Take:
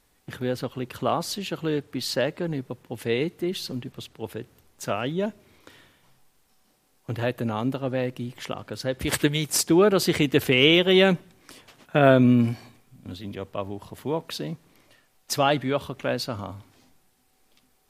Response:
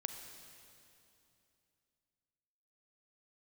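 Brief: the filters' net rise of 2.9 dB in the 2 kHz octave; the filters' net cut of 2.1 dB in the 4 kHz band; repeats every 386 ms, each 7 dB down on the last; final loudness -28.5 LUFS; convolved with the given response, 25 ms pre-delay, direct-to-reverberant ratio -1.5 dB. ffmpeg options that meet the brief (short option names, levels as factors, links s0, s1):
-filter_complex "[0:a]equalizer=f=2000:t=o:g=5.5,equalizer=f=4000:t=o:g=-6,aecho=1:1:386|772|1158|1544|1930:0.447|0.201|0.0905|0.0407|0.0183,asplit=2[s0][s1];[1:a]atrim=start_sample=2205,adelay=25[s2];[s1][s2]afir=irnorm=-1:irlink=0,volume=1.33[s3];[s0][s3]amix=inputs=2:normalize=0,volume=0.376"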